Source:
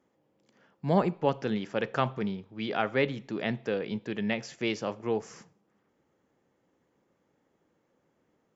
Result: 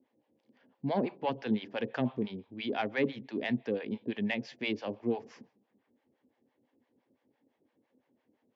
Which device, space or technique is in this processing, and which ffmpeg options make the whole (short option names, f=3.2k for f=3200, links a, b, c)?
guitar amplifier with harmonic tremolo: -filter_complex "[0:a]acrossover=split=600[a][b];[a]aeval=exprs='val(0)*(1-1/2+1/2*cos(2*PI*5.9*n/s))':c=same[c];[b]aeval=exprs='val(0)*(1-1/2-1/2*cos(2*PI*5.9*n/s))':c=same[d];[c][d]amix=inputs=2:normalize=0,asoftclip=type=tanh:threshold=-21dB,highpass=99,equalizer=f=170:t=q:w=4:g=-10,equalizer=f=250:t=q:w=4:g=10,equalizer=f=1.3k:t=q:w=4:g=-10,lowpass=f=4.5k:w=0.5412,lowpass=f=4.5k:w=1.3066,volume=2dB"